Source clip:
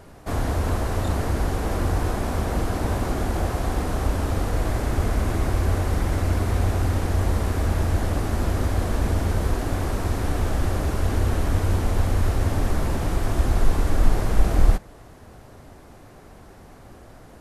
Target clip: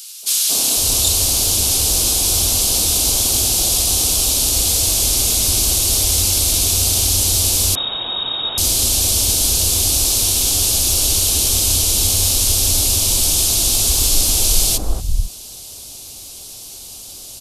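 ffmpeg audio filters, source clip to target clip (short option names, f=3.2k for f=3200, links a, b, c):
-filter_complex "[0:a]acrossover=split=170|1400[a][b][c];[b]adelay=230[d];[a]adelay=500[e];[e][d][c]amix=inputs=3:normalize=0,aexciter=amount=11.3:drive=9.3:freq=2.9k,asettb=1/sr,asplit=3[f][g][h];[f]atrim=end=7.754[i];[g]atrim=start=7.75:end=8.58,asetpts=PTS-STARTPTS,afade=t=in:d=0.004:c=qsin,afade=t=out:st=0.826:d=0.004:c=qsin,lowpass=f=3.2k:t=q:w=0.5098,lowpass=f=3.2k:t=q:w=0.6013,lowpass=f=3.2k:t=q:w=0.9,lowpass=f=3.2k:t=q:w=2.563,afreqshift=-3800[j];[h]atrim=start=8.576[k];[i][j]acrossfade=d=0.004:c1=hsin:c2=qsin[l];[l][k]acrossfade=d=0.004:c1=qsin:c2=hsin,volume=-1.5dB"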